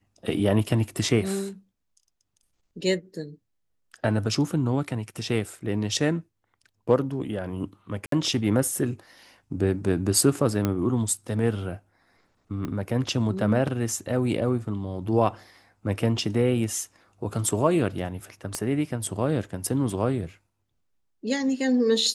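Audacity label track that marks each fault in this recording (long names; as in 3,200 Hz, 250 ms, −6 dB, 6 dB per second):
8.060000	8.120000	drop-out 63 ms
10.650000	10.650000	click −11 dBFS
12.650000	12.650000	click −19 dBFS
18.550000	18.550000	click −14 dBFS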